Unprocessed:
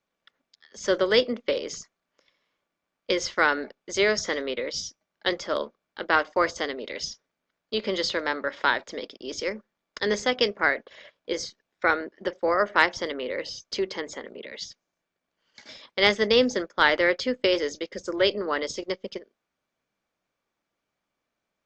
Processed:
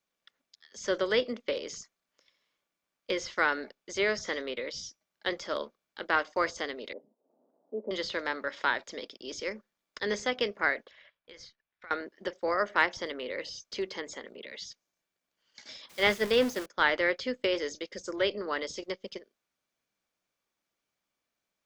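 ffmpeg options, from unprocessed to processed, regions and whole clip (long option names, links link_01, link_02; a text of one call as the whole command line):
ffmpeg -i in.wav -filter_complex "[0:a]asettb=1/sr,asplit=3[link_01][link_02][link_03];[link_01]atrim=end=6.934[link_04];[link_02]atrim=start=6.93:end=7.91,asetpts=PTS-STARTPTS,afade=type=in:duration=0.004:curve=qsin,afade=type=out:start_time=0.976:duration=0.004:curve=qsin,acompressor=mode=upward:threshold=-39dB:ratio=2.5:attack=3.2:release=140:knee=2.83:detection=peak,asuperpass=centerf=420:order=8:qfactor=0.72[link_05];[link_03]atrim=start=7.906[link_06];[link_04][link_05]acrossfade=duration=0.004:curve1=hsin:curve2=qsin[link_07];[link_07][link_06]acrossfade=duration=0.004:curve1=qsin:curve2=hsin,asettb=1/sr,asplit=3[link_08][link_09][link_10];[link_08]atrim=end=10.914[link_11];[link_09]atrim=start=10.91:end=11.91,asetpts=PTS-STARTPTS,afade=type=in:duration=0.004:curve=qsin,afade=type=out:start_time=0.996:duration=0.004:curve=qsin,lowpass=2200,equalizer=frequency=350:width_type=o:width=2.6:gain=-13,acompressor=threshold=-42dB:ratio=4:attack=3.2:release=140:knee=1:detection=peak[link_12];[link_10]atrim=start=11.906[link_13];[link_11][link_12]acrossfade=duration=0.004:curve1=hsin:curve2=qsin[link_14];[link_14][link_13]acrossfade=duration=0.004:curve1=qsin:curve2=hsin,asettb=1/sr,asplit=3[link_15][link_16][link_17];[link_15]atrim=end=15.894[link_18];[link_16]atrim=start=15.89:end=16.66,asetpts=PTS-STARTPTS,afade=type=in:duration=0.004:curve=qsin,afade=type=out:start_time=0.766:duration=0.004:curve=qsin,aeval=exprs='val(0)+0.5*0.0708*sgn(val(0))':channel_layout=same,agate=range=-33dB:threshold=-18dB:ratio=3:release=100:detection=peak[link_19];[link_17]atrim=start=16.656[link_20];[link_18][link_19]acrossfade=duration=0.004:curve1=hsin:curve2=qsin[link_21];[link_21][link_20]acrossfade=duration=0.004:curve1=qsin:curve2=hsin,acrossover=split=2900[link_22][link_23];[link_23]acompressor=threshold=-41dB:ratio=4:attack=1:release=60[link_24];[link_22][link_24]amix=inputs=2:normalize=0,highshelf=frequency=2900:gain=9.5,volume=-6.5dB" out.wav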